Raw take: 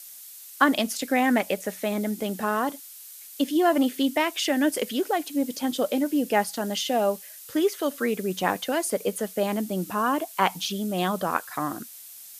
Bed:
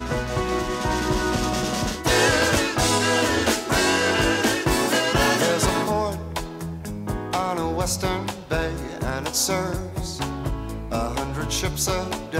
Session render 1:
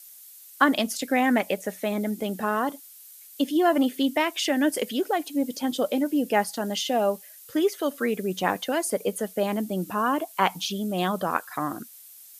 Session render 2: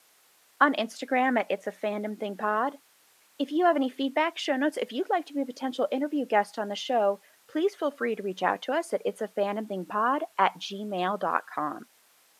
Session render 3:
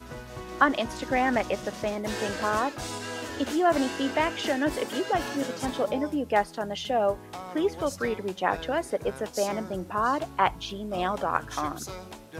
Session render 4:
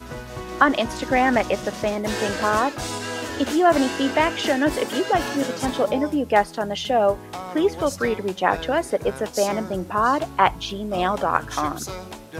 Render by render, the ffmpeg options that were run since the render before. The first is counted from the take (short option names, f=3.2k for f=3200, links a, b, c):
-af "afftdn=nr=6:nf=-45"
-af "acrusher=bits=7:mix=0:aa=0.5,bandpass=f=940:t=q:w=0.5:csg=0"
-filter_complex "[1:a]volume=-15dB[a];[0:a][a]amix=inputs=2:normalize=0"
-af "volume=6dB,alimiter=limit=-2dB:level=0:latency=1"